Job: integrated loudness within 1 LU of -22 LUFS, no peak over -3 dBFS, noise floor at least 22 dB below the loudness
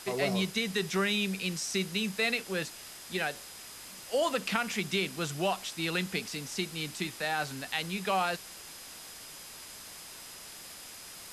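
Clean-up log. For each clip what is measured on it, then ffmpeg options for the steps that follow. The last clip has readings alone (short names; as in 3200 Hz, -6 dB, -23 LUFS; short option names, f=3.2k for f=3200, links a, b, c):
steady tone 5000 Hz; tone level -54 dBFS; noise floor -47 dBFS; noise floor target -54 dBFS; loudness -31.5 LUFS; peak -14.0 dBFS; loudness target -22.0 LUFS
-> -af "bandreject=f=5k:w=30"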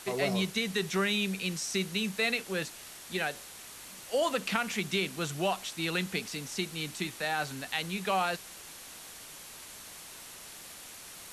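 steady tone none; noise floor -48 dBFS; noise floor target -54 dBFS
-> -af "afftdn=nr=6:nf=-48"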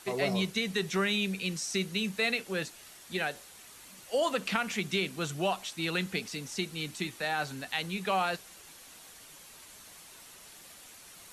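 noise floor -52 dBFS; noise floor target -54 dBFS
-> -af "afftdn=nr=6:nf=-52"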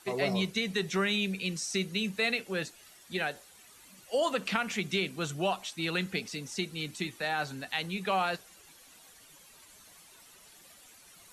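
noise floor -56 dBFS; loudness -32.0 LUFS; peak -14.5 dBFS; loudness target -22.0 LUFS
-> -af "volume=10dB"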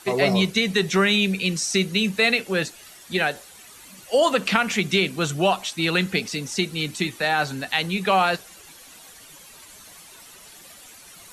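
loudness -22.0 LUFS; peak -4.5 dBFS; noise floor -46 dBFS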